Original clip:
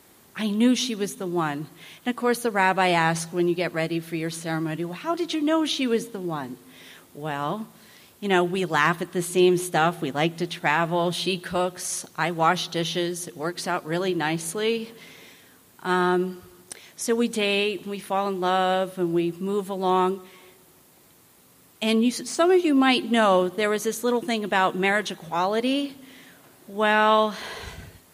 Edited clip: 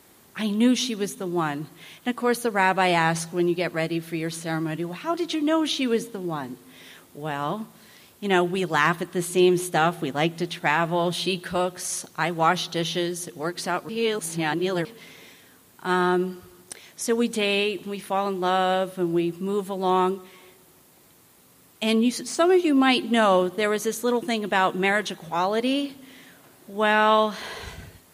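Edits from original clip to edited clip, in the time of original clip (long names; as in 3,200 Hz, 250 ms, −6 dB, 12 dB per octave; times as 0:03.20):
0:13.89–0:14.85: reverse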